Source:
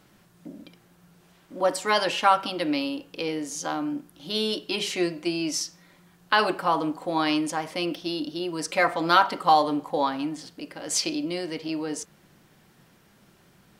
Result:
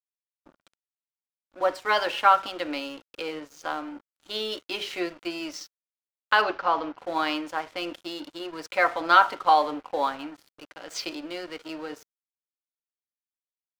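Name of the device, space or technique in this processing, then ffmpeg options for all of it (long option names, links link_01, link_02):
pocket radio on a weak battery: -filter_complex "[0:a]highpass=390,lowpass=3900,aeval=exprs='sgn(val(0))*max(abs(val(0))-0.00631,0)':channel_layout=same,equalizer=frequency=1400:width_type=o:width=0.24:gain=5,asplit=3[link_01][link_02][link_03];[link_01]afade=type=out:start_time=6.41:duration=0.02[link_04];[link_02]lowpass=frequency=5500:width=0.5412,lowpass=frequency=5500:width=1.3066,afade=type=in:start_time=6.41:duration=0.02,afade=type=out:start_time=6.97:duration=0.02[link_05];[link_03]afade=type=in:start_time=6.97:duration=0.02[link_06];[link_04][link_05][link_06]amix=inputs=3:normalize=0"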